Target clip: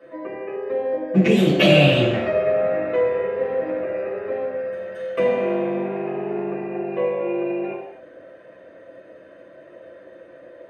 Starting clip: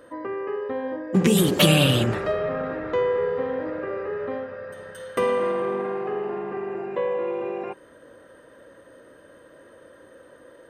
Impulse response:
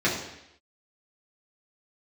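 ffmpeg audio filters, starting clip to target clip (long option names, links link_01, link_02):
-filter_complex "[0:a]equalizer=frequency=630:width_type=o:width=0.67:gain=12,equalizer=frequency=2500:width_type=o:width=0.67:gain=11,equalizer=frequency=10000:width_type=o:width=0.67:gain=-4[link_01];[1:a]atrim=start_sample=2205,afade=type=out:start_time=0.33:duration=0.01,atrim=end_sample=14994[link_02];[link_01][link_02]afir=irnorm=-1:irlink=0,volume=-17dB"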